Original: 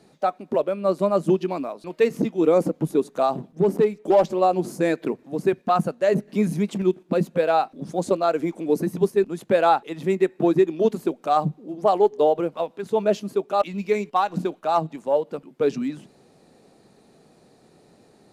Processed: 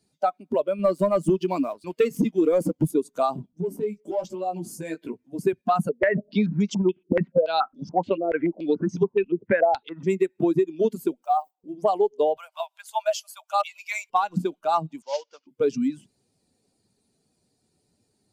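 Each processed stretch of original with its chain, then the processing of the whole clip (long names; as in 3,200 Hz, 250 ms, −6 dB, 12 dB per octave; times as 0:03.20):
0:00.79–0:02.91: high-pass filter 62 Hz + leveller curve on the samples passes 1
0:03.46–0:05.39: downward compressor 12 to 1, threshold −20 dBFS + chorus effect 1.1 Hz, delay 15.5 ms, depth 3.6 ms
0:05.89–0:10.07: high-frequency loss of the air 82 metres + low-pass on a step sequencer 7 Hz 430–6,000 Hz
0:11.23–0:11.64: one scale factor per block 7 bits + four-pole ladder high-pass 630 Hz, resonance 50%
0:12.37–0:14.10: Butterworth high-pass 620 Hz 72 dB per octave + high-shelf EQ 4,700 Hz +4 dB + upward compression, threshold −44 dBFS
0:15.02–0:15.47: variable-slope delta modulation 32 kbit/s + Bessel high-pass filter 940 Hz
whole clip: spectral dynamics exaggerated over time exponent 1.5; high-shelf EQ 5,600 Hz +4 dB; downward compressor, threshold −24 dBFS; level +6 dB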